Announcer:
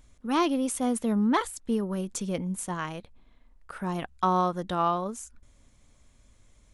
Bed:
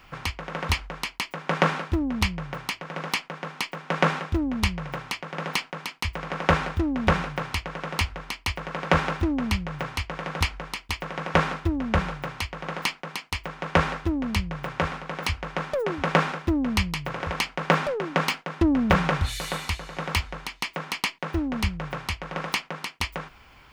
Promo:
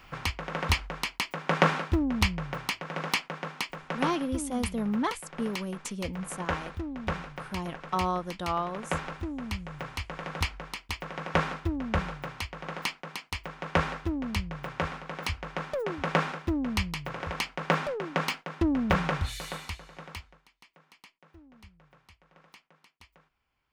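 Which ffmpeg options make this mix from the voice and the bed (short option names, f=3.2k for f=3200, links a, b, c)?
-filter_complex "[0:a]adelay=3700,volume=-4.5dB[a];[1:a]volume=4.5dB,afade=t=out:st=3.33:d=0.77:silence=0.334965,afade=t=in:st=9.32:d=0.86:silence=0.530884,afade=t=out:st=19.21:d=1.21:silence=0.0749894[b];[a][b]amix=inputs=2:normalize=0"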